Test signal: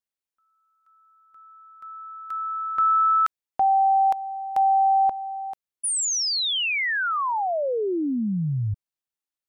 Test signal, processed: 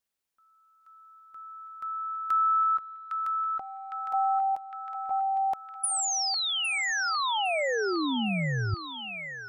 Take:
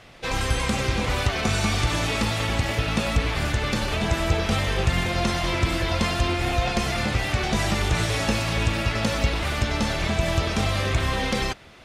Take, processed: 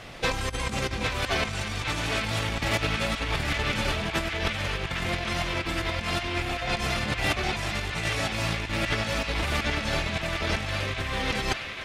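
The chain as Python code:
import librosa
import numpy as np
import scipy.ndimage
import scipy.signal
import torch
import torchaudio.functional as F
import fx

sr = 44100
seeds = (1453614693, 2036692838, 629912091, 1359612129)

y = fx.over_compress(x, sr, threshold_db=-28.0, ratio=-0.5)
y = fx.echo_banded(y, sr, ms=808, feedback_pct=73, hz=2300.0, wet_db=-3)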